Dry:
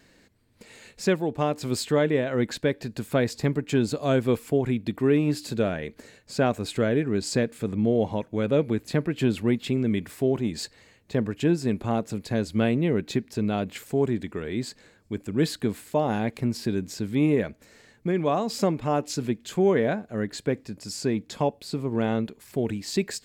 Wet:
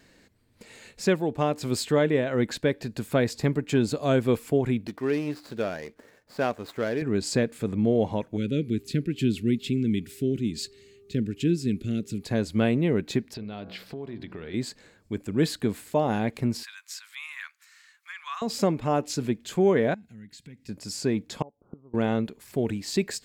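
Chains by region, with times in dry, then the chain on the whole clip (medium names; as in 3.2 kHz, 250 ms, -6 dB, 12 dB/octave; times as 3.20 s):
4.87–7.02 s: median filter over 15 samples + bass shelf 300 Hz -12 dB
8.36–12.23 s: peaking EQ 1.4 kHz +9.5 dB 0.28 oct + mains buzz 400 Hz, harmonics 3, -48 dBFS -5 dB/octave + Chebyshev band-stop 310–2800 Hz
13.34–14.54 s: resonant high shelf 5.8 kHz -8.5 dB, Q 3 + de-hum 62.51 Hz, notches 26 + compression 4:1, threshold -35 dBFS
16.63–18.42 s: steep high-pass 1.1 kHz 48 dB/octave + upward compressor, threshold -59 dBFS
19.94–20.69 s: high-order bell 680 Hz -15.5 dB 2.5 oct + compression 3:1, threshold -46 dBFS + comb of notches 590 Hz
21.42–21.94 s: Chebyshev low-pass 1.4 kHz, order 8 + inverted gate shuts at -29 dBFS, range -24 dB
whole clip: none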